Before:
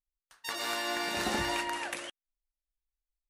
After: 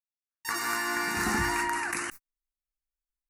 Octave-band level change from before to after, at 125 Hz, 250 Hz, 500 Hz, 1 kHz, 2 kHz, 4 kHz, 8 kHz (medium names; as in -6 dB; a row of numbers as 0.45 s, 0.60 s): +6.5 dB, +4.0 dB, -1.0 dB, +4.5 dB, +6.0 dB, -2.5 dB, +6.0 dB